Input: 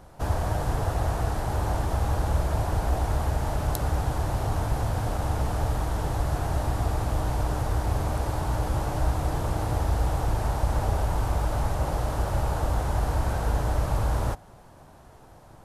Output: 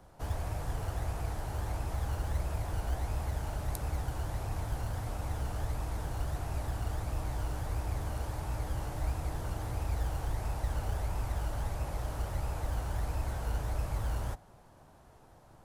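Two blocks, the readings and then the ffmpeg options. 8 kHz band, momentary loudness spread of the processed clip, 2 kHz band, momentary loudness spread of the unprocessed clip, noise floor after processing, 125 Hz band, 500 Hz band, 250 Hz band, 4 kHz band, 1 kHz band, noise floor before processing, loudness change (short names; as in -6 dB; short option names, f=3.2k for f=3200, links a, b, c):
-7.5 dB, 2 LU, -8.5 dB, 2 LU, -58 dBFS, -8.5 dB, -11.5 dB, -11.0 dB, -8.5 dB, -11.5 dB, -50 dBFS, -9.0 dB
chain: -filter_complex "[0:a]acrossover=split=110|5500[a][b][c];[a]acrusher=samples=24:mix=1:aa=0.000001:lfo=1:lforange=14.4:lforate=1.5[d];[b]asoftclip=type=tanh:threshold=-31.5dB[e];[d][e][c]amix=inputs=3:normalize=0,volume=-7.5dB"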